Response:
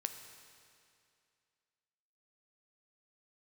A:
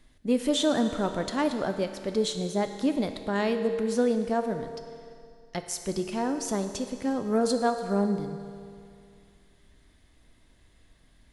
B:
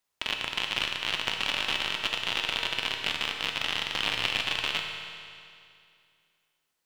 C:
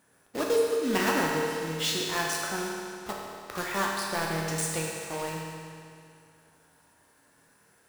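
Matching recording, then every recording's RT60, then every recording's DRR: A; 2.4, 2.4, 2.4 s; 6.5, 2.0, -3.0 dB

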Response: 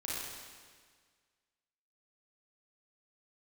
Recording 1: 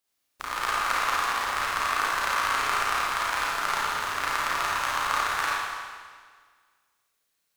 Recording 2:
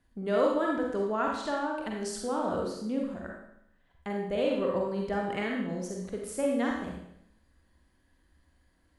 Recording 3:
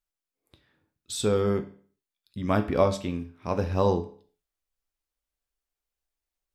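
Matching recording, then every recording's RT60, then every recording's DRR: 1; 1.7, 0.75, 0.45 s; -7.0, -1.5, 7.0 dB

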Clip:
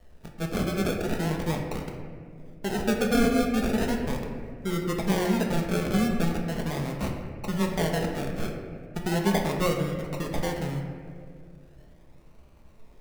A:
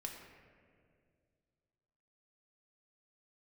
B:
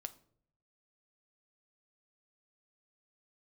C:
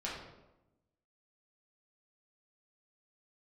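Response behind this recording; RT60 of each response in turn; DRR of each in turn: A; 2.2, 0.60, 0.95 s; 0.5, 9.0, -6.5 dB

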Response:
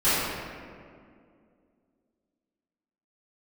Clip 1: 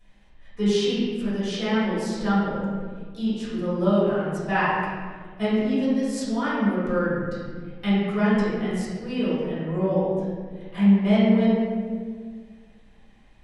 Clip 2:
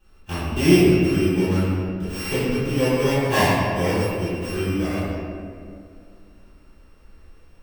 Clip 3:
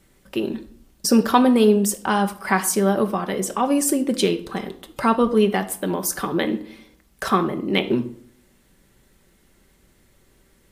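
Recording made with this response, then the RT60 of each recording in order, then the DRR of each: 2; 1.7, 2.2, 0.60 s; -12.0, -17.0, 6.0 dB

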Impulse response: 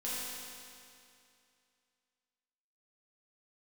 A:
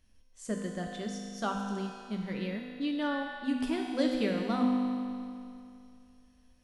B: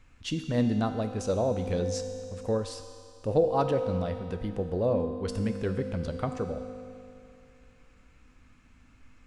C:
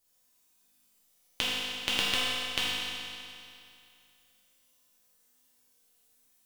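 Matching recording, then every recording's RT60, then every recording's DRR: C; 2.5, 2.5, 2.5 s; -0.5, 6.0, -9.5 dB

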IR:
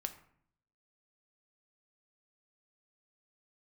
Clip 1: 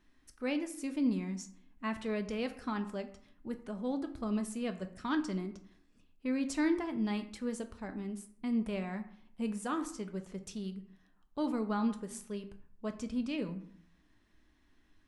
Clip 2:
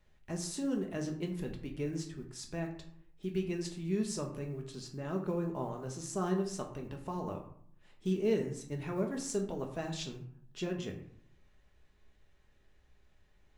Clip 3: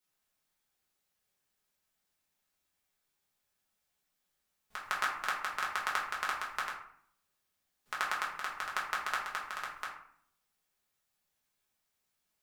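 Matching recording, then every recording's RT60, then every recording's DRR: 1; 0.60, 0.60, 0.60 s; 7.0, 1.5, -5.0 dB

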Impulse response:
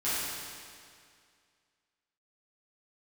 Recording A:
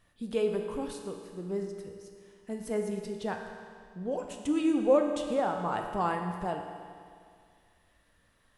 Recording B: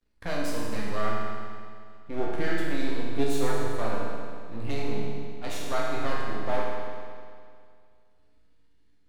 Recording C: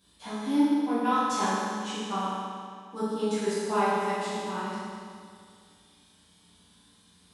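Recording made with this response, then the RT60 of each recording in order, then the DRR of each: C; 2.2, 2.2, 2.2 s; 3.0, -5.0, -13.5 dB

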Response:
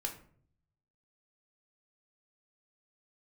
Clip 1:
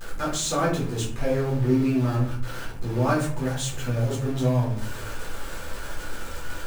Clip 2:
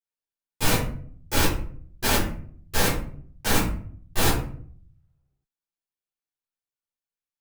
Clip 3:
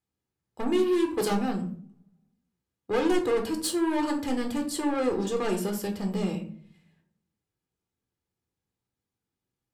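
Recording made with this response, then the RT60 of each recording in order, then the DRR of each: 3; 0.55, 0.55, 0.55 s; -7.0, -13.5, 2.5 dB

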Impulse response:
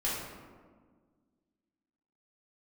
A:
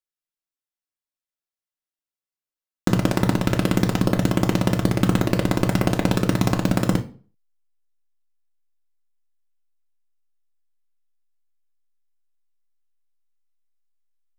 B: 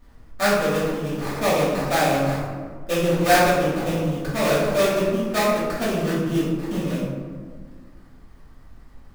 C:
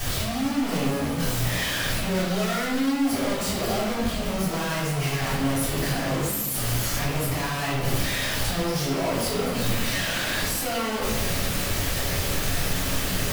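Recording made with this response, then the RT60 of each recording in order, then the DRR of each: B; 0.40, 1.6, 1.0 s; 1.5, -8.5, -9.5 dB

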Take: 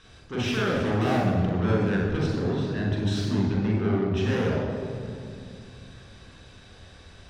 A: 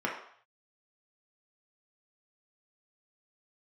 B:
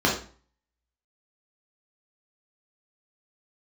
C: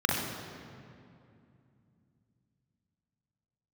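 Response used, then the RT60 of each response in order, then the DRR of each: C; 0.60, 0.40, 2.5 s; -3.0, -4.0, -3.5 dB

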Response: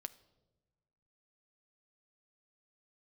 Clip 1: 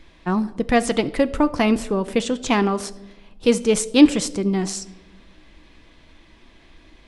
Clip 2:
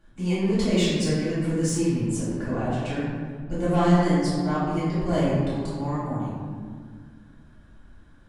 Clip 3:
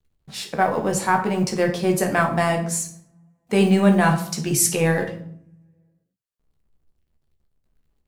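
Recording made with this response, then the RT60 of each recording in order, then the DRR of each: 1; not exponential, 1.8 s, 0.65 s; 12.0, -11.0, 2.5 dB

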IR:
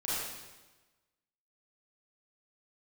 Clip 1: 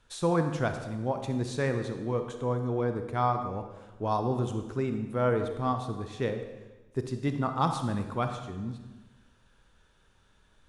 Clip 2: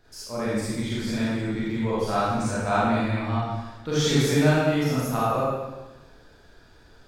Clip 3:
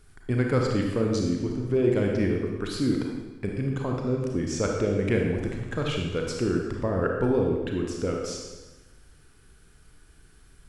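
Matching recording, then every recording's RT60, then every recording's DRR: 2; 1.2, 1.2, 1.2 s; 6.0, -9.5, 0.0 dB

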